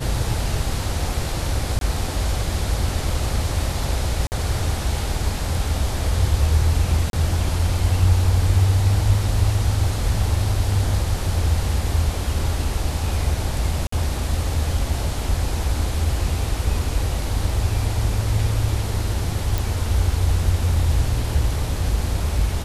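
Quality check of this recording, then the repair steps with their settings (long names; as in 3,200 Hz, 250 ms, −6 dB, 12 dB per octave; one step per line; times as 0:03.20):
0:01.79–0:01.81: drop-out 22 ms
0:04.27–0:04.32: drop-out 49 ms
0:07.10–0:07.13: drop-out 32 ms
0:13.87–0:13.92: drop-out 54 ms
0:19.58: click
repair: click removal
repair the gap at 0:01.79, 22 ms
repair the gap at 0:04.27, 49 ms
repair the gap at 0:07.10, 32 ms
repair the gap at 0:13.87, 54 ms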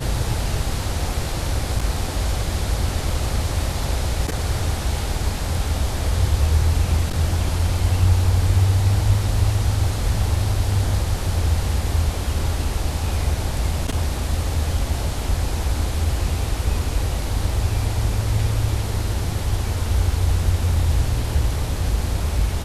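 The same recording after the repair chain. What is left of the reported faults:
none of them is left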